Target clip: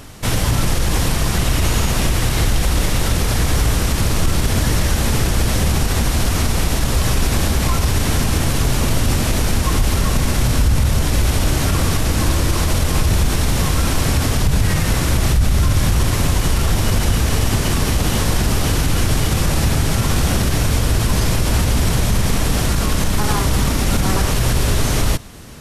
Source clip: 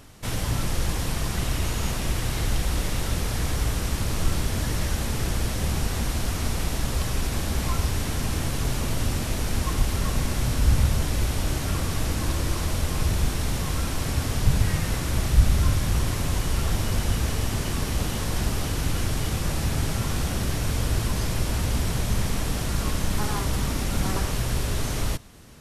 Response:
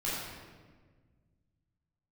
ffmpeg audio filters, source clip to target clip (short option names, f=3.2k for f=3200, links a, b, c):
-af "alimiter=level_in=17dB:limit=-1dB:release=50:level=0:latency=1,volume=-6dB"